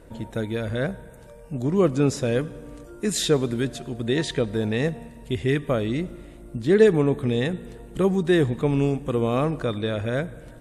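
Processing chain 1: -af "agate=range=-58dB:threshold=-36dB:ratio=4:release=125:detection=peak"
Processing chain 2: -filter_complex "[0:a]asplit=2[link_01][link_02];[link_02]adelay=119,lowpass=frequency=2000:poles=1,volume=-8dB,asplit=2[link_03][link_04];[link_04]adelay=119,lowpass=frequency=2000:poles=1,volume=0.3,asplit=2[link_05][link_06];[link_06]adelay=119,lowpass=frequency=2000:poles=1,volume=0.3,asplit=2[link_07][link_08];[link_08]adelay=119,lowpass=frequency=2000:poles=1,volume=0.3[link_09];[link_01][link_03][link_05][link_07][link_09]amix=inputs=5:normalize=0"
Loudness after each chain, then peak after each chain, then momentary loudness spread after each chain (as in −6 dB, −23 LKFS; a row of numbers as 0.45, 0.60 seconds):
−24.0, −23.5 LKFS; −5.0, −5.0 dBFS; 12, 13 LU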